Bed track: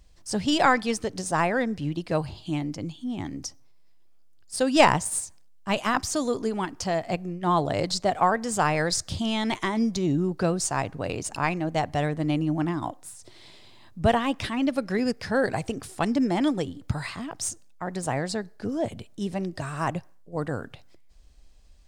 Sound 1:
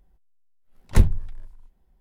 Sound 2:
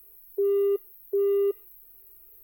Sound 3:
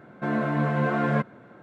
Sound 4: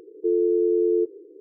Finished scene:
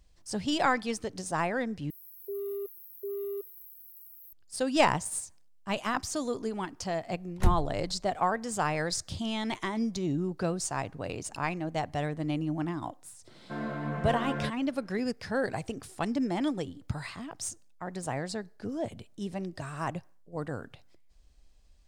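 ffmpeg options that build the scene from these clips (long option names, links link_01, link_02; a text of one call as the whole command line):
ffmpeg -i bed.wav -i cue0.wav -i cue1.wav -i cue2.wav -filter_complex "[0:a]volume=-6dB[link_01];[2:a]highshelf=frequency=3700:width_type=q:width=3:gain=13[link_02];[link_01]asplit=2[link_03][link_04];[link_03]atrim=end=1.904[link_05];[link_02]atrim=end=2.43,asetpts=PTS-STARTPTS,volume=-12dB[link_06];[link_04]atrim=start=4.326[link_07];[1:a]atrim=end=2,asetpts=PTS-STARTPTS,volume=-9dB,afade=type=in:duration=0.004:curve=hsin,afade=type=out:start_time=1.996:duration=0.004:curve=hsin,adelay=6470[link_08];[3:a]atrim=end=1.62,asetpts=PTS-STARTPTS,volume=-9.5dB,afade=type=in:duration=0.004:curve=hsin,afade=type=out:start_time=1.616:duration=0.004:curve=hsin,adelay=13280[link_09];[link_05][link_06]acrossfade=duration=0.004:curve1=hsin:curve2=hsin[link_10];[link_10][link_07]acrossfade=duration=0.004:curve1=hsin:curve2=hsin[link_11];[link_11][link_08][link_09]amix=inputs=3:normalize=0" out.wav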